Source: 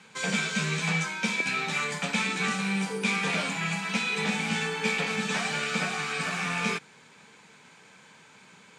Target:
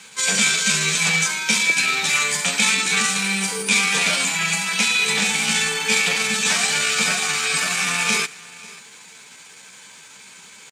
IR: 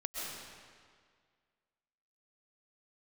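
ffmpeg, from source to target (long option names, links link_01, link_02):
-filter_complex "[0:a]equalizer=frequency=160:width=1.7:gain=-3,aecho=1:1:440|880:0.0841|0.0143,atempo=0.82,crystalizer=i=5.5:c=0[link_01];[1:a]atrim=start_sample=2205,atrim=end_sample=4410[link_02];[link_01][link_02]afir=irnorm=-1:irlink=0,volume=5.5dB"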